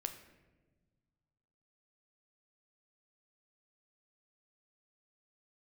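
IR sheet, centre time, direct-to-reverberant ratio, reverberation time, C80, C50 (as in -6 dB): 15 ms, 6.5 dB, 1.3 s, 12.0 dB, 10.0 dB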